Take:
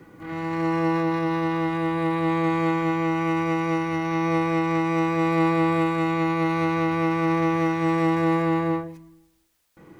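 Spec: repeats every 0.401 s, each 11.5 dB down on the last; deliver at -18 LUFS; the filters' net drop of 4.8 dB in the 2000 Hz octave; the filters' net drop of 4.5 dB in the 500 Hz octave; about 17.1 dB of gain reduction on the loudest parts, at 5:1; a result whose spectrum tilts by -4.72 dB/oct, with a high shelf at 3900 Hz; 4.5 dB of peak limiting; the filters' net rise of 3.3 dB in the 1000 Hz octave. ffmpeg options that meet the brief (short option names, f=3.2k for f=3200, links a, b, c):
-af "equalizer=f=500:t=o:g=-8.5,equalizer=f=1k:t=o:g=8.5,equalizer=f=2k:t=o:g=-8,highshelf=f=3.9k:g=-3,acompressor=threshold=-40dB:ratio=5,alimiter=level_in=12dB:limit=-24dB:level=0:latency=1,volume=-12dB,aecho=1:1:401|802|1203:0.266|0.0718|0.0194,volume=24.5dB"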